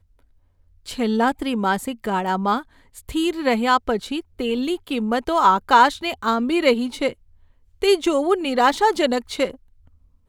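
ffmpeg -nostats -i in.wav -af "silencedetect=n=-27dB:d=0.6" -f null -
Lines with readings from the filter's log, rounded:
silence_start: 0.00
silence_end: 0.89 | silence_duration: 0.89
silence_start: 7.11
silence_end: 7.82 | silence_duration: 0.71
silence_start: 9.51
silence_end: 10.28 | silence_duration: 0.77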